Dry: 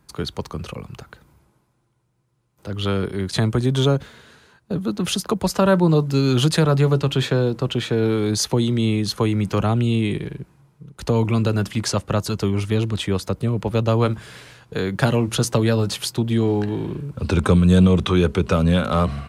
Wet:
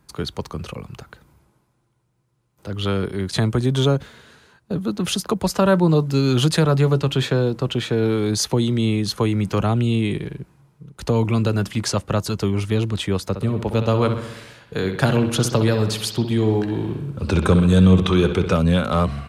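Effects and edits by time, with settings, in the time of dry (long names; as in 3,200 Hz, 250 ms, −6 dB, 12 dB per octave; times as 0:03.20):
0:13.27–0:18.57: bucket-brigade delay 64 ms, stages 2,048, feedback 60%, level −9 dB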